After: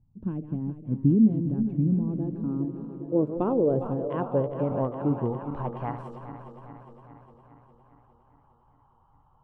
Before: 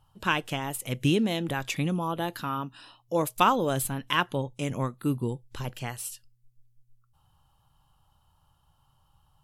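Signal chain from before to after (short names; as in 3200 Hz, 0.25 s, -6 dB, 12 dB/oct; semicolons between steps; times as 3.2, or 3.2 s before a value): regenerating reverse delay 0.204 s, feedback 77%, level -10.5 dB; low-pass sweep 240 Hz -> 1000 Hz, 1.96–5.88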